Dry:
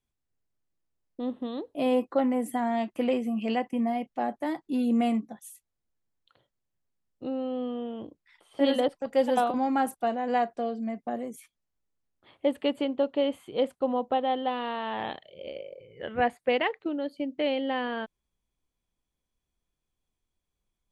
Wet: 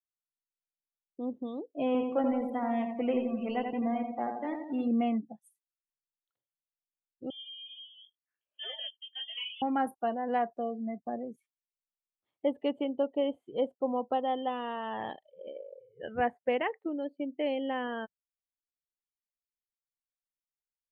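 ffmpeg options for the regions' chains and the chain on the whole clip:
ffmpeg -i in.wav -filter_complex "[0:a]asettb=1/sr,asplit=3[link_01][link_02][link_03];[link_01]atrim=end=1.864[link_04];[link_02]atrim=start=1.86:end=4.88,asetpts=PTS-STARTPTS,afade=type=in:duration=0.004:curve=qsin,afade=type=out:start_time=3.016:duration=0.004:curve=qsin,aeval=exprs='sgn(val(0))*max(abs(val(0))-0.00794,0)':channel_layout=same,bandreject=frequency=1700:width=28,aecho=1:1:86|172|258|344|430|516|602|688:0.562|0.326|0.189|0.11|0.0636|0.0369|0.0214|0.0124,atrim=end_sample=133182[link_05];[link_03]atrim=start=4.876[link_06];[link_04][link_05]acrossfade=duration=0.004:curve1=hsin:curve2=qsin[link_07];[link_07][link_06]acrossfade=duration=0.004:curve1=qsin:curve2=hsin,asettb=1/sr,asplit=3[link_08][link_09][link_10];[link_08]atrim=end=7.304[link_11];[link_09]atrim=start=7.3:end=9.62,asetpts=PTS-STARTPTS,afade=type=in:duration=0.004:curve=qsin,afade=type=out:start_time=2.316:duration=0.004:curve=qsin,highpass=frequency=410:width=0.5412,highpass=frequency=410:width=1.3066,flanger=delay=18:depth=4.4:speed=1.7,lowpass=frequency=3100:width_type=q:width=0.5098,lowpass=frequency=3100:width_type=q:width=0.6013,lowpass=frequency=3100:width_type=q:width=0.9,lowpass=frequency=3100:width_type=q:width=2.563,afreqshift=-3700[link_12];[link_10]atrim=start=9.616[link_13];[link_11][link_12]acrossfade=duration=0.004:curve1=hsin:curve2=qsin[link_14];[link_14][link_13]acrossfade=duration=0.004:curve1=qsin:curve2=hsin,afftdn=noise_reduction=27:noise_floor=-39,acrossover=split=2500[link_15][link_16];[link_16]acompressor=threshold=-46dB:ratio=4:attack=1:release=60[link_17];[link_15][link_17]amix=inputs=2:normalize=0,volume=-3.5dB" out.wav

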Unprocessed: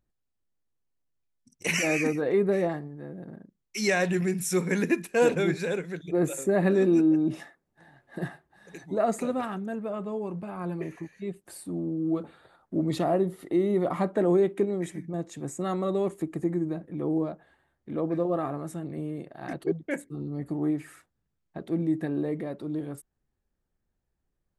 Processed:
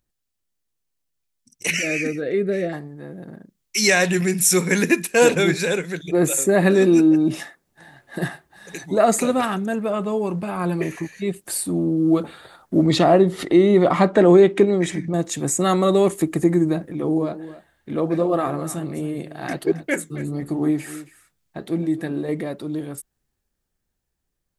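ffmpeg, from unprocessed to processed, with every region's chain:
ffmpeg -i in.wav -filter_complex "[0:a]asettb=1/sr,asplit=3[link_01][link_02][link_03];[link_01]atrim=end=1.704[link_04];[link_02]atrim=start=1.7:end=2.73,asetpts=PTS-STARTPTS,afade=type=in:duration=0.004:curve=qsin,afade=type=out:start_time=1.026:duration=0.004:curve=qsin,asuperstop=centerf=950:order=4:qfactor=1.3,aemphasis=mode=reproduction:type=50kf[link_05];[link_03]atrim=start=2.726[link_06];[link_04][link_05]acrossfade=duration=0.004:curve1=hsin:curve2=qsin[link_07];[link_07][link_06]acrossfade=duration=0.004:curve1=qsin:curve2=hsin,asettb=1/sr,asplit=3[link_08][link_09][link_10];[link_08]atrim=end=12.864[link_11];[link_09]atrim=start=12.86:end=15.14,asetpts=PTS-STARTPTS,afade=type=in:duration=0.004:curve=qsin,afade=type=out:start_time=2.276:duration=0.004:curve=qsin,lowpass=5500,acompressor=mode=upward:threshold=-32dB:ratio=2.5:attack=3.2:release=140:knee=2.83:detection=peak[link_12];[link_10]atrim=start=15.136[link_13];[link_11][link_12]acrossfade=duration=0.004:curve1=hsin:curve2=qsin[link_14];[link_14][link_13]acrossfade=duration=0.004:curve1=qsin:curve2=hsin,asettb=1/sr,asplit=3[link_15][link_16][link_17];[link_15]atrim=end=16.924[link_18];[link_16]atrim=start=16.92:end=22.29,asetpts=PTS-STARTPTS,afade=type=in:duration=0.004:curve=qsin,afade=type=out:start_time=5.366:duration=0.004:curve=qsin,aecho=1:1:270:0.168,atrim=end_sample=236817,flanger=delay=2.6:depth=5.9:regen=-74:speed=1.4:shape=sinusoidal[link_19];[link_17]atrim=start=22.286[link_20];[link_18][link_19]acrossfade=duration=0.004:curve1=hsin:curve2=qsin[link_21];[link_21][link_20]acrossfade=duration=0.004:curve1=qsin:curve2=hsin,highshelf=frequency=2200:gain=10,dynaudnorm=framelen=370:gausssize=17:maxgain=11.5dB" out.wav

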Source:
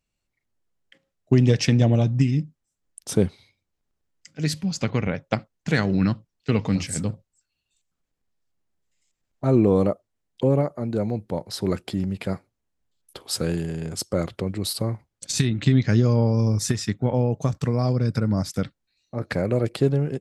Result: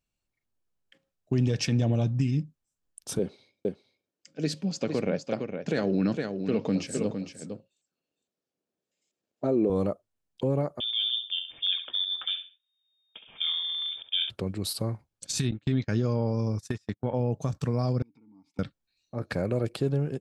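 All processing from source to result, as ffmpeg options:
ffmpeg -i in.wav -filter_complex "[0:a]asettb=1/sr,asplit=3[link_01][link_02][link_03];[link_01]atrim=end=3.194[link_04];[link_02]atrim=start=3.19:end=9.7,asetpts=PTS-STARTPTS,afade=type=in:duration=0.004:curve=qsin,afade=type=out:start_time=6.506:duration=0.004:curve=qsin,highpass=260,lowpass=7200,lowshelf=frequency=720:width_type=q:width=1.5:gain=6.5,aecho=1:1:459:0.376,atrim=end_sample=287091[link_05];[link_03]atrim=start=9.696[link_06];[link_04][link_05]acrossfade=duration=0.004:curve1=hsin:curve2=qsin[link_07];[link_07][link_06]acrossfade=duration=0.004:curve1=qsin:curve2=hsin,asettb=1/sr,asplit=3[link_08][link_09][link_10];[link_08]atrim=end=10.804[link_11];[link_09]atrim=start=10.8:end=14.3,asetpts=PTS-STARTPTS,afade=type=in:duration=0.004:curve=qsin,afade=type=out:start_time=3.496:duration=0.004:curve=qsin,highshelf=frequency=2900:gain=-7.5,aecho=1:1:68|136|204:0.355|0.0923|0.024,atrim=end_sample=154350,lowpass=frequency=3100:width_type=q:width=0.5098,lowpass=frequency=3100:width_type=q:width=0.6013,lowpass=frequency=3100:width_type=q:width=0.9,lowpass=frequency=3100:width_type=q:width=2.563,afreqshift=-3700[link_12];[link_10]atrim=start=14.296[link_13];[link_11][link_12]acrossfade=duration=0.004:curve1=hsin:curve2=qsin[link_14];[link_14][link_13]acrossfade=duration=0.004:curve1=qsin:curve2=hsin,asettb=1/sr,asplit=3[link_15][link_16][link_17];[link_15]atrim=end=15.514[link_18];[link_16]atrim=start=15.51:end=17.2,asetpts=PTS-STARTPTS,afade=type=in:duration=0.004:curve=qsin,afade=type=out:start_time=1.686:duration=0.004:curve=qsin,bass=frequency=250:gain=-4,treble=frequency=4000:gain=-4,agate=range=-29dB:threshold=-29dB:ratio=16:release=100:detection=peak[link_19];[link_17]atrim=start=17.196[link_20];[link_18][link_19]acrossfade=duration=0.004:curve1=hsin:curve2=qsin[link_21];[link_21][link_20]acrossfade=duration=0.004:curve1=qsin:curve2=hsin,asettb=1/sr,asplit=3[link_22][link_23][link_24];[link_22]atrim=end=18.024[link_25];[link_23]atrim=start=18.02:end=18.59,asetpts=PTS-STARTPTS,afade=type=in:duration=0.004:curve=qsin,afade=type=out:start_time=0.566:duration=0.004:curve=qsin,acompressor=threshold=-35dB:ratio=8:attack=3.2:release=140:knee=1:detection=peak,asplit=3[link_26][link_27][link_28];[link_26]bandpass=frequency=300:width_type=q:width=8,volume=0dB[link_29];[link_27]bandpass=frequency=870:width_type=q:width=8,volume=-6dB[link_30];[link_28]bandpass=frequency=2240:width_type=q:width=8,volume=-9dB[link_31];[link_29][link_30][link_31]amix=inputs=3:normalize=0,aecho=1:1:4.4:0.33,atrim=end_sample=25137[link_32];[link_24]atrim=start=18.586[link_33];[link_25][link_32]acrossfade=duration=0.004:curve1=hsin:curve2=qsin[link_34];[link_34][link_33]acrossfade=duration=0.004:curve1=qsin:curve2=hsin,bandreject=frequency=2000:width=10,alimiter=limit=-12dB:level=0:latency=1:release=56,volume=-4.5dB" out.wav

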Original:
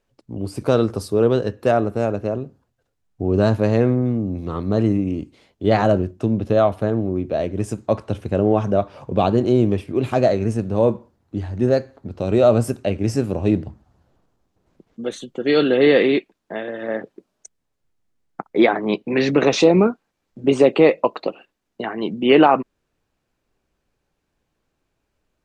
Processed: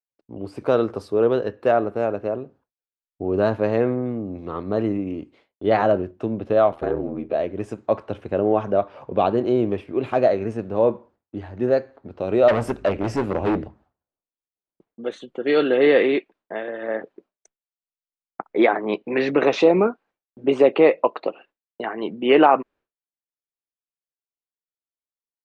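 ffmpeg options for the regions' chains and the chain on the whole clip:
ffmpeg -i in.wav -filter_complex "[0:a]asettb=1/sr,asplit=3[link_01][link_02][link_03];[link_01]atrim=end=6.714[link_04];[link_02]atrim=start=6.71:end=7.35,asetpts=PTS-STARTPTS,afade=type=in:duration=0.004:curve=qsin,afade=type=out:start_time=0.636:duration=0.004:curve=qsin,aecho=1:1:6.7:0.96,atrim=end_sample=28224,aeval=exprs='val(0)*sin(2*PI*40*n/s)':channel_layout=same[link_05];[link_03]atrim=start=7.346[link_06];[link_04][link_05]acrossfade=duration=0.004:curve1=hsin:curve2=qsin[link_07];[link_07][link_06]acrossfade=duration=0.004:curve1=qsin:curve2=hsin,asettb=1/sr,asplit=3[link_08][link_09][link_10];[link_08]atrim=end=12.484[link_11];[link_09]atrim=start=12.48:end=13.67,asetpts=PTS-STARTPTS,afade=type=in:duration=0.004:curve=qsin,afade=type=out:start_time=1.186:duration=0.004:curve=qsin,acontrast=47,aeval=exprs='val(0)+0.0178*(sin(2*PI*50*n/s)+sin(2*PI*2*50*n/s)/2+sin(2*PI*3*50*n/s)/3+sin(2*PI*4*50*n/s)/4+sin(2*PI*5*50*n/s)/5)':channel_layout=same,asoftclip=type=hard:threshold=-13.5dB[link_12];[link_10]atrim=start=13.666[link_13];[link_11][link_12]acrossfade=duration=0.004:curve1=hsin:curve2=qsin[link_14];[link_14][link_13]acrossfade=duration=0.004:curve1=qsin:curve2=hsin,highshelf=frequency=6900:gain=-9,agate=range=-33dB:threshold=-44dB:ratio=3:detection=peak,bass=frequency=250:gain=-11,treble=frequency=4000:gain=-11" out.wav

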